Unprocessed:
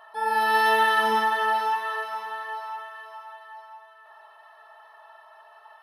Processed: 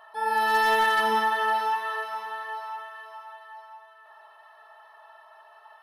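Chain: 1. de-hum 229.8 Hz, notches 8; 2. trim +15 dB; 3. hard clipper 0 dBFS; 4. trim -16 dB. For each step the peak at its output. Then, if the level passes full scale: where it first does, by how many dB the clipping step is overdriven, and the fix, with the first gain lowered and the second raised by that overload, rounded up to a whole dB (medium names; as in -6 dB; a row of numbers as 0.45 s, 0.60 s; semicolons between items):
-10.0 dBFS, +5.0 dBFS, 0.0 dBFS, -16.0 dBFS; step 2, 5.0 dB; step 2 +10 dB, step 4 -11 dB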